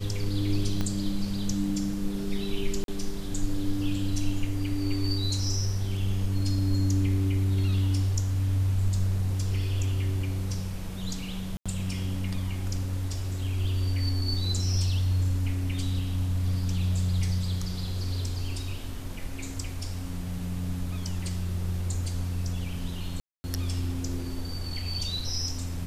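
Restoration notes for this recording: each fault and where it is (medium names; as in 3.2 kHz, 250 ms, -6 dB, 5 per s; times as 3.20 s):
0.81 s: pop -17 dBFS
2.84–2.88 s: dropout 42 ms
11.57–11.66 s: dropout 86 ms
23.20–23.44 s: dropout 240 ms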